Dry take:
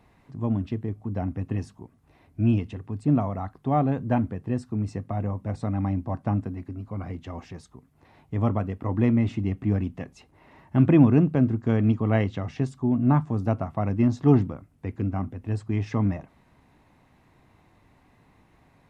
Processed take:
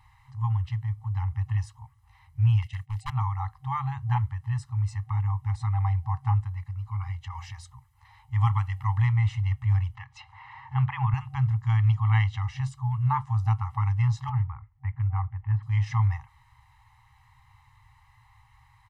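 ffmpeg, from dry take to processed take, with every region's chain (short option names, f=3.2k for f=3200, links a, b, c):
-filter_complex "[0:a]asettb=1/sr,asplit=3[a][b][c];[a]atrim=end=2.624[d];[b]atrim=start=2.62:end=3.1,asetpts=PTS-STARTPTS,afade=t=in:d=0.004:c=qsin,afade=t=out:st=0.476:d=0.004:c=qsin,agate=range=-33dB:threshold=-36dB:ratio=3:release=100:detection=peak,highshelf=f=1.6k:t=q:w=1.5:g=10,aeval=exprs='0.0473*(abs(mod(val(0)/0.0473+3,4)-2)-1)':c=same[e];[c]atrim=start=3.096[f];[d][e]acrossfade=d=0.004:c1=hsin:c2=qsin[g];[g][f]acrossfade=d=0.004:c1=qsin:c2=hsin,asettb=1/sr,asplit=3[h][i][j];[h]atrim=end=7.284[k];[i]atrim=start=7.28:end=9.02,asetpts=PTS-STARTPTS,afade=t=in:d=0.004:c=qsin,afade=t=out:st=1.736:d=0.004:c=qsin,bandreject=f=88.85:t=h:w=4,bandreject=f=177.7:t=h:w=4,bandreject=f=266.55:t=h:w=4,bandreject=f=355.4:t=h:w=4,bandreject=f=444.25:t=h:w=4,bandreject=f=533.1:t=h:w=4,bandreject=f=621.95:t=h:w=4,bandreject=f=710.8:t=h:w=4,bandreject=f=799.65:t=h:w=4,bandreject=f=888.5:t=h:w=4,adynamicequalizer=threshold=0.00501:dfrequency=1700:dqfactor=0.7:tfrequency=1700:tqfactor=0.7:attack=5:release=100:ratio=0.375:range=3:mode=boostabove:tftype=highshelf[l];[j]atrim=start=9.016[m];[k][l]acrossfade=d=0.004:c1=hsin:c2=qsin[n];[n][m]acrossfade=d=0.004:c1=qsin:c2=hsin,asettb=1/sr,asplit=3[o][p][q];[o]atrim=end=9.954[r];[p]atrim=start=9.95:end=11.14,asetpts=PTS-STARTPTS,afade=t=in:d=0.004:c=qsin,afade=t=out:st=1.186:d=0.004:c=qsin,highpass=130,lowpass=3.4k,acompressor=mode=upward:threshold=-37dB:ratio=2.5:attack=3.2:release=140:knee=2.83:detection=peak[s];[q]atrim=start=11.136[t];[r][s]acrossfade=d=0.004:c1=hsin:c2=qsin[u];[u][t]acrossfade=d=0.004:c1=qsin:c2=hsin,asettb=1/sr,asplit=3[v][w][x];[v]atrim=end=14.294[y];[w]atrim=start=14.29:end=15.63,asetpts=PTS-STARTPTS,afade=t=in:d=0.004:c=qsin,afade=t=out:st=1.336:d=0.004:c=qsin,lowpass=f=2.2k:w=0.5412,lowpass=f=2.2k:w=1.3066,agate=range=-33dB:threshold=-58dB:ratio=3:release=100:detection=peak,acompressor=threshold=-21dB:ratio=2:attack=3.2:release=140:knee=1:detection=peak[z];[x]atrim=start=15.626[aa];[y][z]acrossfade=d=0.004:c1=hsin:c2=qsin[ab];[ab][aa]acrossfade=d=0.004:c1=qsin:c2=hsin,afftfilt=real='re*(1-between(b*sr/4096,130,770))':imag='im*(1-between(b*sr/4096,130,770))':win_size=4096:overlap=0.75,aecho=1:1:1:0.64"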